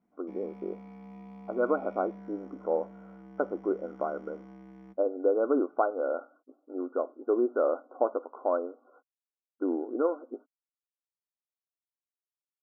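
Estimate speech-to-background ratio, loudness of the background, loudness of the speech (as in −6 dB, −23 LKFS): 17.5 dB, −49.0 LKFS, −31.5 LKFS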